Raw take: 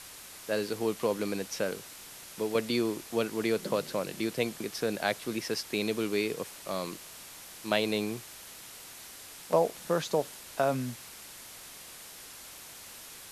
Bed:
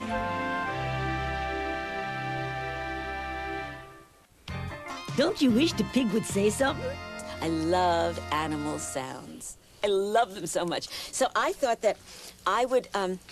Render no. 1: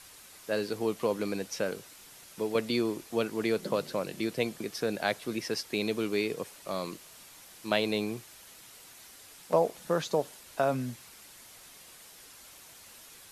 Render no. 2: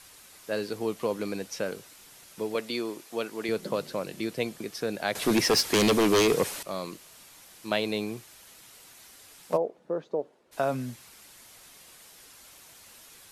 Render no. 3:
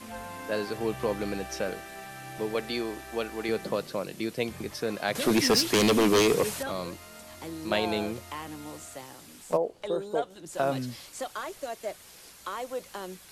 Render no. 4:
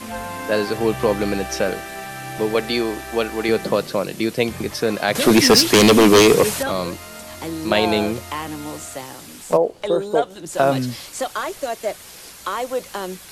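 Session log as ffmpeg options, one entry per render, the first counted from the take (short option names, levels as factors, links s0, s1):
-af "afftdn=nr=6:nf=-48"
-filter_complex "[0:a]asettb=1/sr,asplit=3[s0][s1][s2];[s0]atrim=end=2.554[s3];[s1]atrim=start=2.55:end=3.49,asetpts=PTS-STARTPTS,afade=t=in:d=0.004:c=qsin,afade=t=out:st=0.936:d=0.004:c=qsin,highpass=f=370:p=1[s4];[s2]atrim=start=3.486[s5];[s3][s4]acrossfade=d=0.004:c1=hsin:c2=qsin[s6];[s6][s5]acrossfade=d=0.004:c1=qsin:c2=hsin,asettb=1/sr,asplit=3[s7][s8][s9];[s7]atrim=end=5.154[s10];[s8]atrim=start=5.15:end=6.63,asetpts=PTS-STARTPTS,afade=t=in:d=0.004:c=qsin,afade=t=out:st=1.476:d=0.004:c=qsin,aeval=exprs='0.141*sin(PI/2*3.16*val(0)/0.141)':c=same[s11];[s9]atrim=start=6.626[s12];[s10][s11]acrossfade=d=0.004:c1=hsin:c2=qsin[s13];[s13][s12]acrossfade=d=0.004:c1=qsin:c2=hsin,asplit=3[s14][s15][s16];[s14]afade=t=out:st=9.56:d=0.02[s17];[s15]bandpass=f=400:t=q:w=1.3,afade=t=in:st=9.56:d=0.02,afade=t=out:st=10.51:d=0.02[s18];[s16]afade=t=in:st=10.51:d=0.02[s19];[s17][s18][s19]amix=inputs=3:normalize=0"
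-filter_complex "[1:a]volume=0.316[s0];[0:a][s0]amix=inputs=2:normalize=0"
-af "volume=3.35,alimiter=limit=0.708:level=0:latency=1"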